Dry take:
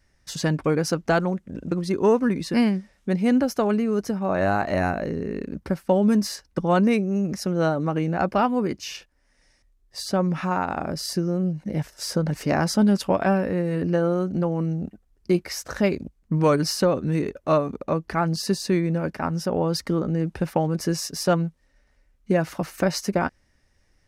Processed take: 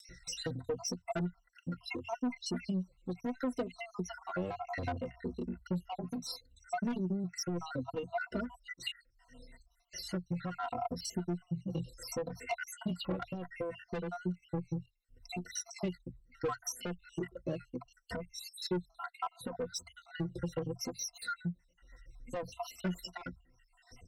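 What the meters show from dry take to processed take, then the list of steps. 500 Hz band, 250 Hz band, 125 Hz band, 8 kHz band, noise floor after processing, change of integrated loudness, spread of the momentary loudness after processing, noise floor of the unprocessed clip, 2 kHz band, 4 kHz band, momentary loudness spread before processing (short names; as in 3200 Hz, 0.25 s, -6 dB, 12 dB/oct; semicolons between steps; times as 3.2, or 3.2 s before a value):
-17.0 dB, -16.0 dB, -15.0 dB, -9.0 dB, -72 dBFS, -15.5 dB, 8 LU, -65 dBFS, -13.0 dB, -10.5 dB, 9 LU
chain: random spectral dropouts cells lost 69%; high shelf 8500 Hz -7.5 dB; rotary speaker horn 5.5 Hz; vibrato 0.49 Hz 6 cents; ripple EQ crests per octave 2, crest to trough 17 dB; upward compressor, threshold -38 dBFS; soft clip -22 dBFS, distortion -7 dB; compressor, threshold -32 dBFS, peak gain reduction 8 dB; endless flanger 3.1 ms -0.69 Hz; gain +1 dB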